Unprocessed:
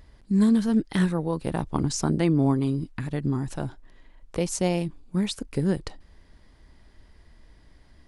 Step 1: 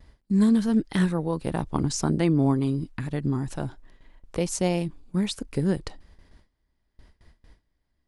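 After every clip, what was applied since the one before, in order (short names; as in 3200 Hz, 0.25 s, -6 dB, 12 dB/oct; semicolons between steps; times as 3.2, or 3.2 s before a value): gate with hold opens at -42 dBFS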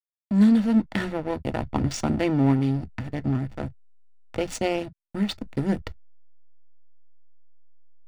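backlash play -25.5 dBFS; reverb, pre-delay 3 ms, DRR 14 dB; gain -2.5 dB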